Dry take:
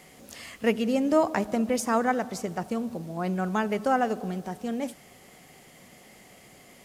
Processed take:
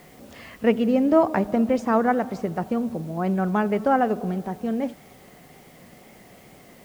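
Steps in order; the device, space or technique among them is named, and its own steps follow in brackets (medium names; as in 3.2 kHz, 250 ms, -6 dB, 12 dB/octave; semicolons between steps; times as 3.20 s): cassette deck with a dirty head (tape spacing loss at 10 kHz 28 dB; wow and flutter; white noise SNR 33 dB); trim +6 dB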